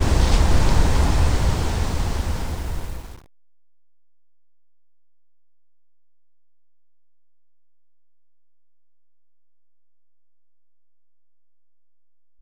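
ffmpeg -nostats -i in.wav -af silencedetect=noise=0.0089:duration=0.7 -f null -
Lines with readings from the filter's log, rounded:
silence_start: 3.20
silence_end: 12.42 | silence_duration: 9.22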